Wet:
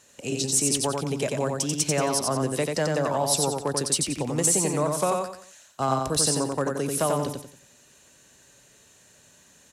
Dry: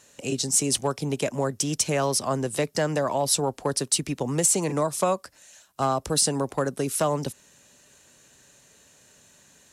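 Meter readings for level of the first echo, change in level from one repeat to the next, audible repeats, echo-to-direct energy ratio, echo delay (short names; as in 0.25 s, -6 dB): -3.5 dB, -9.5 dB, 4, -3.0 dB, 90 ms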